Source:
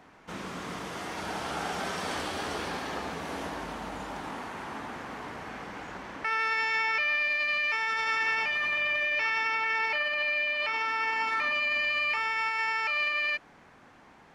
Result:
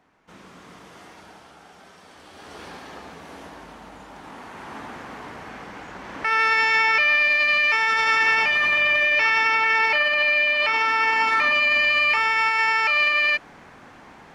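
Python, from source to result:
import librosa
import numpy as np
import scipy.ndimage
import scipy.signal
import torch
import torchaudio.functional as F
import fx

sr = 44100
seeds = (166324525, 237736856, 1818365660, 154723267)

y = fx.gain(x, sr, db=fx.line((1.05, -8.0), (1.58, -15.5), (2.15, -15.5), (2.64, -5.0), (4.1, -5.0), (4.78, 2.0), (5.94, 2.0), (6.39, 9.0)))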